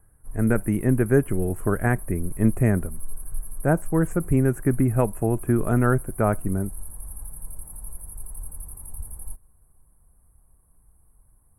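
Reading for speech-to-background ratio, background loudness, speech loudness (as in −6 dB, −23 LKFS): 16.0 dB, −39.5 LKFS, −23.5 LKFS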